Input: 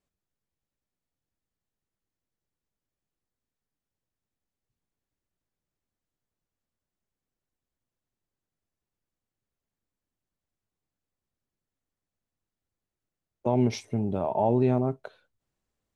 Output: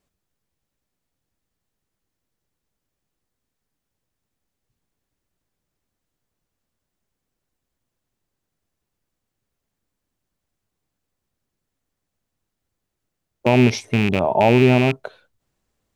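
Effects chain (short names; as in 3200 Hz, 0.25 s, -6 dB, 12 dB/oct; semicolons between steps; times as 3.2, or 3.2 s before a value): rattling part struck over -28 dBFS, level -21 dBFS; gain +9 dB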